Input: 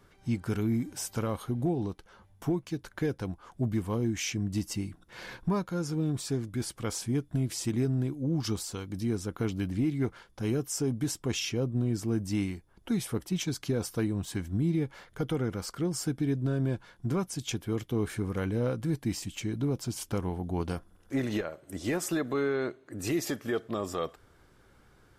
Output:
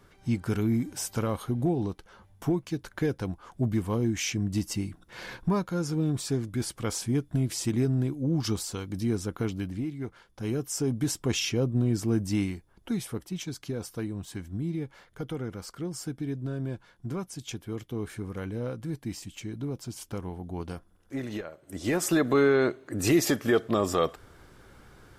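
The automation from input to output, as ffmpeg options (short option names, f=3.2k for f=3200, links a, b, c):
-af "volume=24.5dB,afade=t=out:st=9.25:d=0.72:silence=0.334965,afade=t=in:st=9.97:d=1.22:silence=0.298538,afade=t=out:st=12.18:d=1.13:silence=0.421697,afade=t=in:st=21.58:d=0.72:silence=0.266073"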